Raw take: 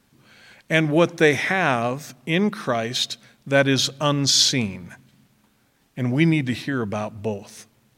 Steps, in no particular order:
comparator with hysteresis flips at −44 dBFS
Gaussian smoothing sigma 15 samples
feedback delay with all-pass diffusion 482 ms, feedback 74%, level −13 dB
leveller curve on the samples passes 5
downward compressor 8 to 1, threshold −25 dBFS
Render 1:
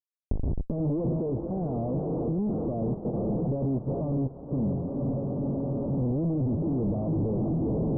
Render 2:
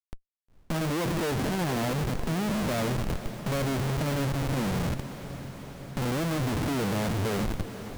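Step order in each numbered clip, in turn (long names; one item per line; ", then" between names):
feedback delay with all-pass diffusion, then leveller curve on the samples, then comparator with hysteresis, then downward compressor, then Gaussian smoothing
Gaussian smoothing, then leveller curve on the samples, then downward compressor, then comparator with hysteresis, then feedback delay with all-pass diffusion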